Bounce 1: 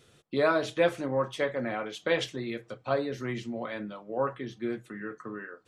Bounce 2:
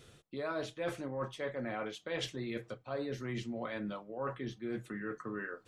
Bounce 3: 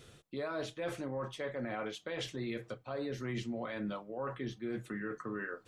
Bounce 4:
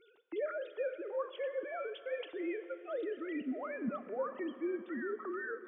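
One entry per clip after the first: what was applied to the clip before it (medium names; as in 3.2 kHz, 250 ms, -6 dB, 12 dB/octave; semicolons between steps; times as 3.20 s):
bass shelf 74 Hz +9 dB; reverse; compression 6:1, threshold -37 dBFS, peak gain reduction 17 dB; reverse; trim +1.5 dB
peak limiter -30.5 dBFS, peak gain reduction 7 dB; trim +1.5 dB
formants replaced by sine waves; recorder AGC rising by 7.7 dB/s; plate-style reverb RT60 4.1 s, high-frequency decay 0.8×, DRR 12 dB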